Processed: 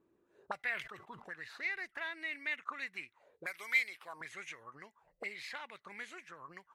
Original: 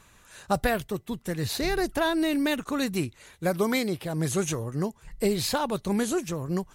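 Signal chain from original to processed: 3.46–4.21 RIAA curve recording; auto-wah 330–2100 Hz, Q 7.1, up, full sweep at -24.5 dBFS; 0.57–1.26 sustainer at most 90 dB/s; gain +2.5 dB

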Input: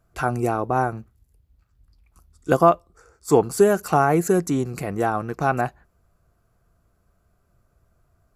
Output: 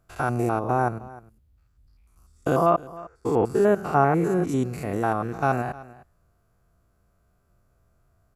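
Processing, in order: stepped spectrum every 0.1 s; 2.7–4.49 tone controls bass 0 dB, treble -13 dB; on a send: echo 0.308 s -19.5 dB

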